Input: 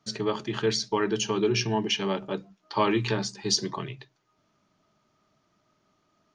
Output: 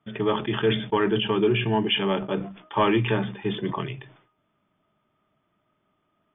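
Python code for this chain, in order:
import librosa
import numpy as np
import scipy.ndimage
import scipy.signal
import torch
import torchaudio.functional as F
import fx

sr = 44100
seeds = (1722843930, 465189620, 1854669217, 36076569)

y = fx.leveller(x, sr, passes=1)
y = fx.brickwall_lowpass(y, sr, high_hz=3600.0)
y = fx.sustainer(y, sr, db_per_s=98.0)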